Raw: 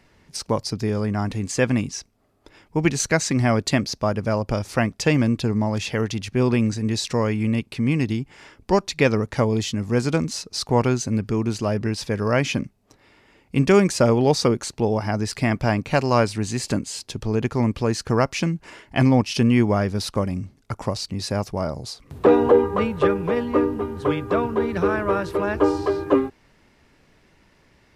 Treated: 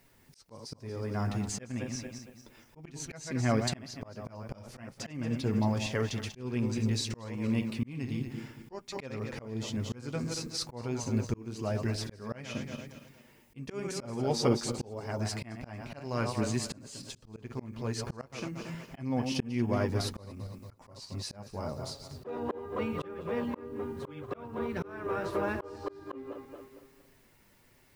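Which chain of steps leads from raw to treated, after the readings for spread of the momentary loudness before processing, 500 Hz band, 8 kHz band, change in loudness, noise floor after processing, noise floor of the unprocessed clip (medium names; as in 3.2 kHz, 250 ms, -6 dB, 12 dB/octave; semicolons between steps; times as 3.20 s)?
9 LU, -15.0 dB, -10.5 dB, -13.0 dB, -62 dBFS, -59 dBFS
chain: backward echo that repeats 115 ms, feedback 56%, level -9 dB; added noise blue -61 dBFS; flange 1 Hz, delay 7.2 ms, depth 1.6 ms, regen -32%; slow attack 485 ms; trim -4 dB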